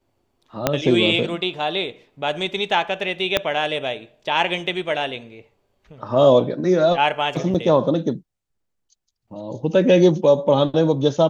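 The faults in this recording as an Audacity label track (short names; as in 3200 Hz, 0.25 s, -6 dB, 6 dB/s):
0.670000	0.670000	pop -2 dBFS
3.370000	3.370000	pop -3 dBFS
7.540000	7.550000	gap 6.8 ms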